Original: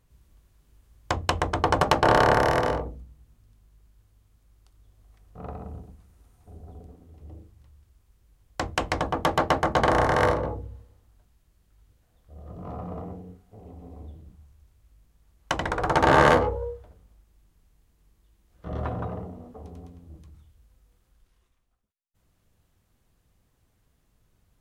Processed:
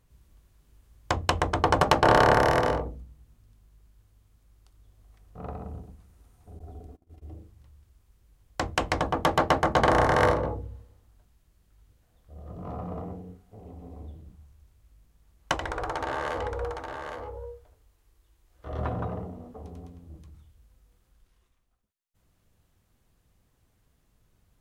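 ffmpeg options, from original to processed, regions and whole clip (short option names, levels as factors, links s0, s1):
-filter_complex "[0:a]asettb=1/sr,asplit=3[s0][s1][s2];[s0]atrim=end=6.594[s3];[s1]atrim=start=6.59:end=7.34,asetpts=PTS-STARTPTS,afade=t=in:d=0.004:c=qsin,afade=t=out:st=0.746:d=0.004:c=qsin,bandreject=f=1000:w=20,agate=range=0.0708:threshold=0.00316:ratio=16:release=100:detection=peak,aecho=1:1:2.9:0.41,atrim=end_sample=33075[s4];[s2]atrim=start=7.336[s5];[s3][s4]acrossfade=d=0.004:c1=hsin:c2=qsin[s6];[s6][s5]acrossfade=d=0.004:c1=qsin:c2=hsin,asettb=1/sr,asplit=3[s7][s8][s9];[s7]atrim=end=15.544[s10];[s8]atrim=start=15.54:end=18.79,asetpts=PTS-STARTPTS,afade=t=in:d=0.004:c=qsin,afade=t=out:st=3.246:d=0.004:c=qsin,equalizer=f=180:t=o:w=0.81:g=-15,acompressor=threshold=0.0447:ratio=8:attack=3.2:release=140:knee=1:detection=peak,aecho=1:1:812:0.473,atrim=end_sample=143325[s11];[s9]atrim=start=18.786[s12];[s10][s11]acrossfade=d=0.004:c1=hsin:c2=qsin[s13];[s13][s12]acrossfade=d=0.004:c1=qsin:c2=hsin"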